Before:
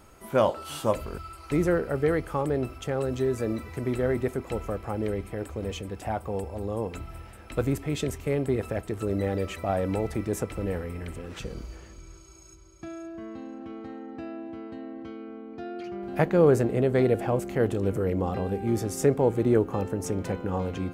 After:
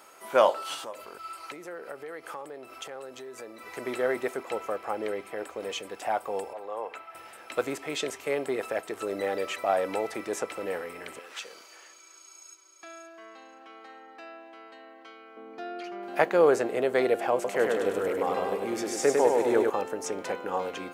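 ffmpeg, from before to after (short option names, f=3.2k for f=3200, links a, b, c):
-filter_complex "[0:a]asettb=1/sr,asplit=3[a][b][c];[a]atrim=end=0.744[d];[b]atrim=start=0.74:end=3.7,asetpts=PTS-STARTPTS,afade=t=in:d=0.004:c=qsin,afade=t=out:st=2.956:d=0.004:c=qsin,acompressor=threshold=-37dB:ratio=5:attack=3.2:release=140:knee=1:detection=peak[e];[c]atrim=start=3.696[f];[d][e]acrossfade=d=0.004:c1=hsin:c2=qsin[g];[g][f]acrossfade=d=0.004:c1=qsin:c2=hsin,asettb=1/sr,asplit=3[h][i][j];[h]atrim=end=4.434[k];[i]atrim=start=4.43:end=5.6,asetpts=PTS-STARTPTS,afade=t=in:d=0.004:c=qsin,afade=t=out:st=1.166:d=0.004:c=qsin,highshelf=f=4.4k:g=-4.5[l];[j]atrim=start=5.596[m];[k][l]acrossfade=d=0.004:c1=hsin:c2=qsin[n];[n][m]acrossfade=d=0.004:c1=qsin:c2=hsin,asettb=1/sr,asplit=3[o][p][q];[o]atrim=end=6.534[r];[p]atrim=start=6.53:end=7.15,asetpts=PTS-STARTPTS,afade=t=in:d=0.004:c=qsin,afade=t=out:st=0.616:d=0.004:c=qsin,acrossover=split=490 2900:gain=0.178 1 0.2[s][t][u];[s][t][u]amix=inputs=3:normalize=0[v];[q]atrim=start=7.146[w];[r][v]acrossfade=d=0.004:c1=hsin:c2=qsin[x];[x][w]acrossfade=d=0.004:c1=qsin:c2=hsin,asettb=1/sr,asplit=3[y][z][aa];[y]atrim=end=11.194[ab];[z]atrim=start=11.19:end=15.37,asetpts=PTS-STARTPTS,afade=t=in:d=0.004:c=qsin,afade=t=out:st=4.176:d=0.004:c=qsin,highpass=f=1.1k:p=1[ac];[aa]atrim=start=15.366[ad];[ab][ac]acrossfade=d=0.004:c1=hsin:c2=qsin[ae];[ae][ad]acrossfade=d=0.004:c1=qsin:c2=hsin,asettb=1/sr,asplit=3[af][ag][ah];[af]atrim=end=17.344[ai];[ag]atrim=start=17.34:end=19.7,asetpts=PTS-STARTPTS,afade=t=in:d=0.004:c=qsin,afade=t=out:st=2.356:d=0.004:c=qsin,aecho=1:1:101|202|303|404|505|606|707|808:0.668|0.374|0.21|0.117|0.0657|0.0368|0.0206|0.0115,atrim=end_sample=104076[aj];[ah]atrim=start=19.696[ak];[ai][aj]acrossfade=d=0.004:c1=hsin:c2=qsin[al];[al][ak]acrossfade=d=0.004:c1=qsin:c2=hsin,highpass=560,acrossover=split=7900[am][an];[an]acompressor=threshold=-55dB:ratio=4:attack=1:release=60[ao];[am][ao]amix=inputs=2:normalize=0,volume=4.5dB"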